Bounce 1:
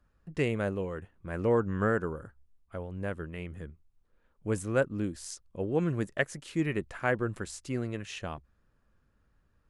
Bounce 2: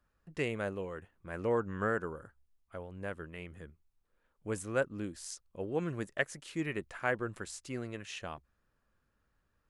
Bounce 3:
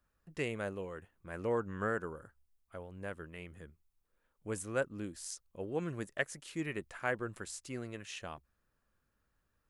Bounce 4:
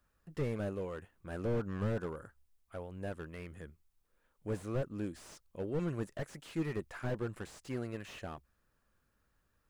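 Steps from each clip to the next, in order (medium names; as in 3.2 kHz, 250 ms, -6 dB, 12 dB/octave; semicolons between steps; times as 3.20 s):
bass shelf 370 Hz -7 dB; trim -2 dB
treble shelf 7.8 kHz +6.5 dB; trim -2.5 dB
slew-rate limiter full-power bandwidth 8.1 Hz; trim +3 dB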